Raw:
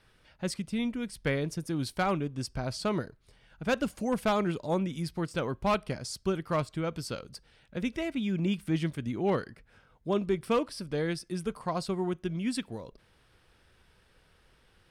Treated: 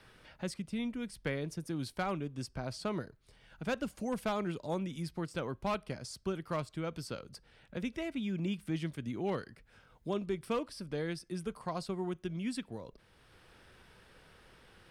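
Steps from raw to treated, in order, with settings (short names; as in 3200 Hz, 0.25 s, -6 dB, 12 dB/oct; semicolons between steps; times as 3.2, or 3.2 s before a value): three-band squash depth 40%; gain -6 dB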